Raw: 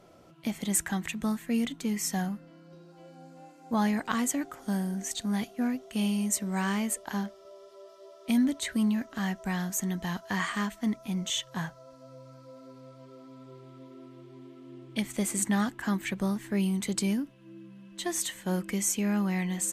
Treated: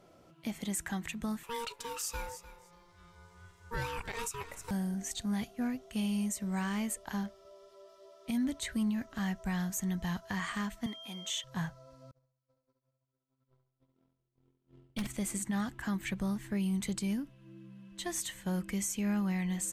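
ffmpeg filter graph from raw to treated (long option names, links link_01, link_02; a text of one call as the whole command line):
ffmpeg -i in.wav -filter_complex "[0:a]asettb=1/sr,asplit=3[link_01][link_02][link_03];[link_01]atrim=end=1.434[link_04];[link_02]atrim=start=1.43:end=4.71,asetpts=PTS-STARTPTS,afade=type=in:duration=0.004:curve=qsin,afade=type=out:start_time=3.276:duration=0.004:curve=qsin,tiltshelf=frequency=760:gain=-5.5,aeval=exprs='val(0)*sin(2*PI*700*n/s)':channel_layout=same,aecho=1:1:300|600:0.158|0.0254,atrim=end_sample=144648[link_05];[link_03]atrim=start=4.706[link_06];[link_04][link_05]acrossfade=duration=0.004:curve1=hsin:curve2=qsin[link_07];[link_07][link_06]acrossfade=duration=0.004:curve1=qsin:curve2=hsin,asettb=1/sr,asplit=3[link_08][link_09][link_10];[link_08]atrim=end=10.864[link_11];[link_09]atrim=start=10.86:end=11.44,asetpts=PTS-STARTPTS,afade=type=in:duration=0.004:curve=qsin,afade=type=out:start_time=0.576:duration=0.004:curve=qsin,highpass=380,aeval=exprs='val(0)+0.00794*sin(2*PI*3200*n/s)':channel_layout=same[link_12];[link_10]atrim=start=11.436[link_13];[link_11][link_12]acrossfade=duration=0.004:curve1=hsin:curve2=qsin[link_14];[link_14][link_13]acrossfade=duration=0.004:curve1=qsin:curve2=hsin,asettb=1/sr,asplit=3[link_15][link_16][link_17];[link_15]atrim=end=12.114[link_18];[link_16]atrim=start=12.11:end=15.07,asetpts=PTS-STARTPTS,afade=type=in:duration=0.004:curve=qsin,afade=type=out:start_time=2.956:duration=0.004:curve=qsin,agate=range=-40dB:threshold=-45dB:ratio=16:release=100:detection=peak,aeval=exprs='0.0596*(abs(mod(val(0)/0.0596+3,4)-2)-1)':channel_layout=same,aecho=1:1:68|136|204|272|340:0.501|0.19|0.0724|0.0275|0.0105,atrim=end_sample=130536[link_19];[link_17]atrim=start=15.066[link_20];[link_18][link_19]acrossfade=duration=0.004:curve1=hsin:curve2=qsin[link_21];[link_21][link_20]acrossfade=duration=0.004:curve1=qsin:curve2=hsin,asubboost=boost=3.5:cutoff=140,alimiter=limit=-21.5dB:level=0:latency=1:release=94,volume=-4dB" out.wav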